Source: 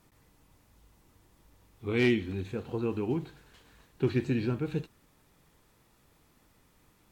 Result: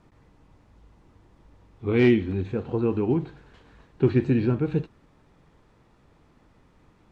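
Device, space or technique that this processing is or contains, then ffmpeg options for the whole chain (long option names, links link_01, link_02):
through cloth: -af "lowpass=6600,highshelf=frequency=2400:gain=-12,volume=7.5dB"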